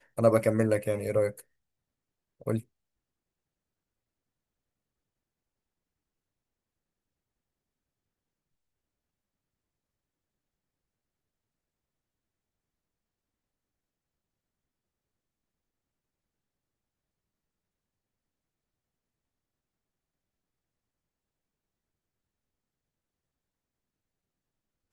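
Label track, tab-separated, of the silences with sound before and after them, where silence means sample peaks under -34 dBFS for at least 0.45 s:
1.400000	2.470000	silence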